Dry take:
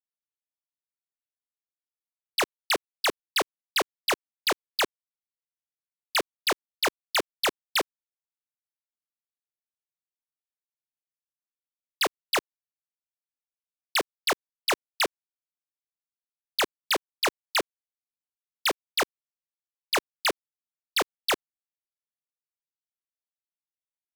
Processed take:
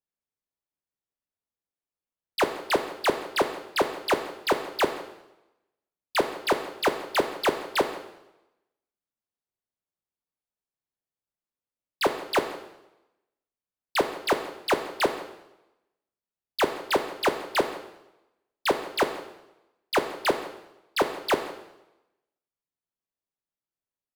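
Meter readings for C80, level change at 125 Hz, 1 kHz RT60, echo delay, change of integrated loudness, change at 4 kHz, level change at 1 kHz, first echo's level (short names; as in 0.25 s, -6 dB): 11.5 dB, +8.0 dB, 0.90 s, 0.168 s, +0.5 dB, -4.5 dB, +3.5 dB, -20.0 dB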